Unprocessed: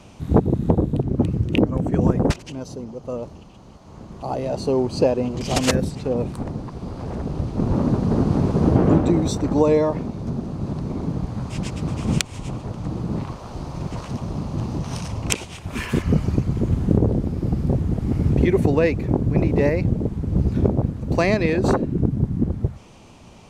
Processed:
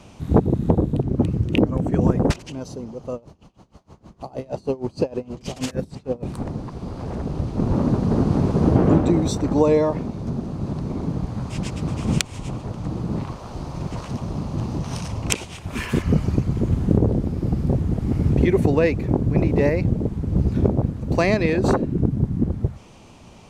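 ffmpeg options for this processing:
ffmpeg -i in.wav -filter_complex "[0:a]asettb=1/sr,asplit=3[link_01][link_02][link_03];[link_01]atrim=end=3.144[link_04];[link_02]atrim=start=3.14:end=6.23,asetpts=PTS-STARTPTS,afade=type=in:duration=0.004:curve=qsin,afade=type=out:start_time=3.086:duration=0.004:curve=qsin,aeval=exprs='val(0)*pow(10,-24*(0.5-0.5*cos(2*PI*6.4*n/s))/20)':channel_layout=same[link_05];[link_03]atrim=start=6.226[link_06];[link_04][link_05]acrossfade=duration=0.004:curve1=hsin:curve2=qsin[link_07];[link_07][link_06]acrossfade=duration=0.004:curve1=qsin:curve2=hsin" out.wav

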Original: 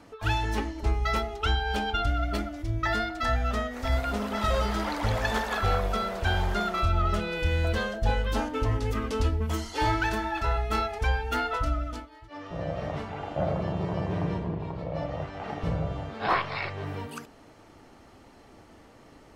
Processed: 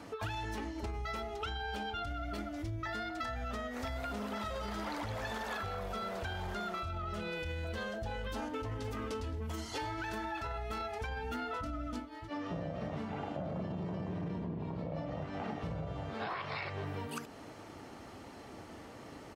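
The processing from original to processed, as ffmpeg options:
ffmpeg -i in.wav -filter_complex "[0:a]asplit=2[link_01][link_02];[link_02]afade=type=in:start_time=8.17:duration=0.01,afade=type=out:start_time=8.85:duration=0.01,aecho=0:1:520|1040|1560:0.251189|0.0502377|0.0100475[link_03];[link_01][link_03]amix=inputs=2:normalize=0,asettb=1/sr,asplit=3[link_04][link_05][link_06];[link_04]atrim=end=11.094[link_07];[link_05]atrim=start=11.09:end=15.56,asetpts=PTS-STARTPTS,afade=type=in:duration=0.004:curve=qsin,afade=type=out:start_time=4.466:duration=0.004:curve=qsin,equalizer=frequency=230:width=1.8:gain=9.5[link_08];[link_06]atrim=start=15.556[link_09];[link_07][link_08]acrossfade=duration=0.004:curve1=hsin:curve2=qsin[link_10];[link_10][link_09]acrossfade=duration=0.004:curve1=qsin:curve2=hsin,alimiter=limit=-22.5dB:level=0:latency=1:release=25,highpass=67,acompressor=threshold=-40dB:ratio=6,volume=3.5dB" out.wav

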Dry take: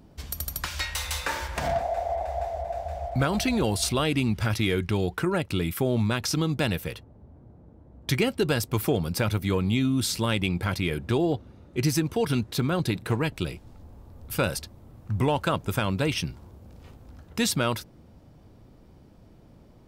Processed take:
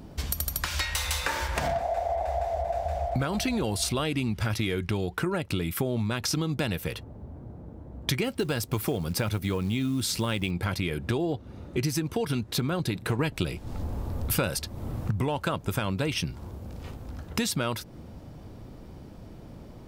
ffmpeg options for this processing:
ffmpeg -i in.wav -filter_complex "[0:a]asettb=1/sr,asplit=3[link_01][link_02][link_03];[link_01]atrim=end=8.244[link_04];[link_02]atrim=start=8.24:end=10.51,asetpts=PTS-STARTPTS,afade=type=in:duration=0.004:curve=qsin,afade=type=out:start_time=2.266:duration=0.004:curve=qsin,acrusher=bits=7:mode=log:mix=0:aa=0.000001[link_05];[link_03]atrim=start=10.506[link_06];[link_04][link_05]acrossfade=duration=0.004:curve1=hsin:curve2=qsin[link_07];[link_07][link_06]acrossfade=duration=0.004:curve1=qsin:curve2=hsin,asplit=3[link_08][link_09][link_10];[link_08]atrim=end=13.192[link_11];[link_09]atrim=start=13.188:end=15.112,asetpts=PTS-STARTPTS,volume=7.5dB[link_12];[link_10]atrim=start=15.108[link_13];[link_11][link_12]acrossfade=duration=0.004:curve1=hsin:curve2=hsin[link_14];[link_14][link_13]acrossfade=duration=0.004:curve1=hsin:curve2=hsin,acompressor=threshold=-34dB:ratio=5,volume=8dB" out.wav

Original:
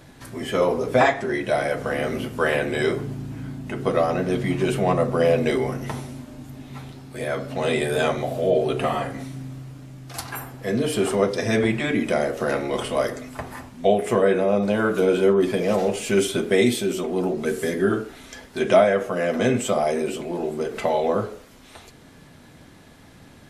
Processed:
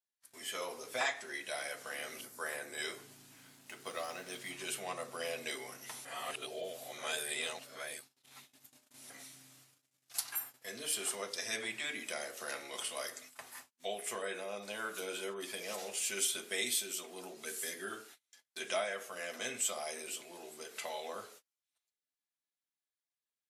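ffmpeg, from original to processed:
ffmpeg -i in.wav -filter_complex "[0:a]asettb=1/sr,asplit=3[link_01][link_02][link_03];[link_01]atrim=end=2.214[link_04];[link_02]atrim=start=2.21:end=2.78,asetpts=PTS-STARTPTS,afade=type=in:duration=0.004:curve=qsin,afade=type=out:start_time=0.566:duration=0.004:curve=qsin,equalizer=frequency=2900:width_type=o:width=0.76:gain=-14[link_05];[link_03]atrim=start=2.776[link_06];[link_04][link_05]acrossfade=duration=0.004:curve1=hsin:curve2=qsin[link_07];[link_07][link_06]acrossfade=duration=0.004:curve1=qsin:curve2=hsin,asettb=1/sr,asplit=3[link_08][link_09][link_10];[link_08]atrim=end=3.364[link_11];[link_09]atrim=start=3.36:end=4.5,asetpts=PTS-STARTPTS,afade=type=in:duration=0.004:curve=qsin,afade=type=out:start_time=1.136:duration=0.004:curve=qsin,aeval=exprs='sgn(val(0))*max(abs(val(0))-0.00473,0)':channel_layout=same[link_12];[link_10]atrim=start=4.496[link_13];[link_11][link_12]acrossfade=duration=0.004:curve1=hsin:curve2=qsin[link_14];[link_14][link_13]acrossfade=duration=0.004:curve1=qsin:curve2=hsin,asplit=3[link_15][link_16][link_17];[link_15]atrim=end=6.052[link_18];[link_16]atrim=start=6.048:end=9.102,asetpts=PTS-STARTPTS,areverse[link_19];[link_17]atrim=start=9.098[link_20];[link_18][link_19]acrossfade=duration=0.004:curve1=hsin:curve2=hsin[link_21];[link_21][link_20]acrossfade=duration=0.004:curve1=hsin:curve2=hsin,highshelf=frequency=10000:gain=-5.5,agate=range=-37dB:threshold=-37dB:ratio=16:detection=peak,aderivative" out.wav

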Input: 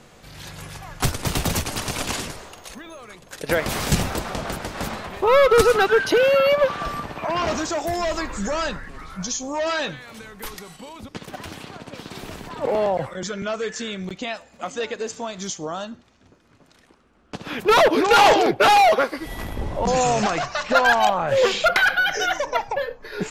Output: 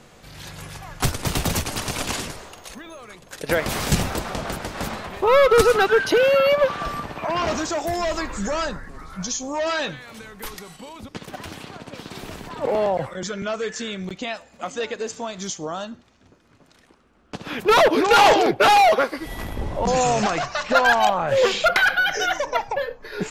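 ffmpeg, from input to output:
ffmpeg -i in.wav -filter_complex "[0:a]asettb=1/sr,asplit=3[link_01][link_02][link_03];[link_01]atrim=end=8.654[link_04];[link_02]atrim=start=8.65:end=9.13,asetpts=PTS-STARTPTS,afade=type=in:duration=0.004:curve=qsin,afade=type=out:start_time=0.476:duration=0.004:curve=qsin,equalizer=frequency=2800:width_type=o:width=1.1:gain=-8.5[link_05];[link_03]atrim=start=9.126[link_06];[link_04][link_05]acrossfade=duration=0.004:curve1=hsin:curve2=qsin[link_07];[link_07][link_06]acrossfade=duration=0.004:curve1=qsin:curve2=hsin" out.wav

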